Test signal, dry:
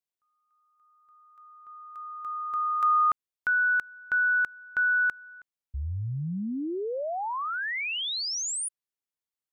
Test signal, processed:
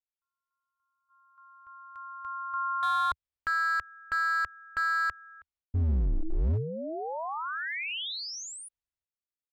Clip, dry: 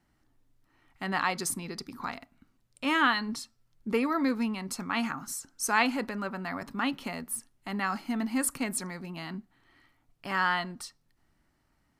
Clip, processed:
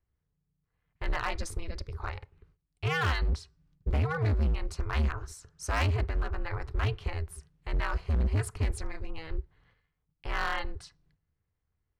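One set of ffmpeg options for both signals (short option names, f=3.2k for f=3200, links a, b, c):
-filter_complex "[0:a]agate=range=-14dB:threshold=-58dB:ratio=16:release=463:detection=peak,aeval=exprs='val(0)*sin(2*PI*160*n/s)':c=same,lowshelf=f=120:t=q:w=1.5:g=13.5,acrossover=split=4000[a][b];[a]volume=23.5dB,asoftclip=hard,volume=-23.5dB[c];[b]adynamicsmooth=sensitivity=0.5:basefreq=6.6k[d];[c][d]amix=inputs=2:normalize=0"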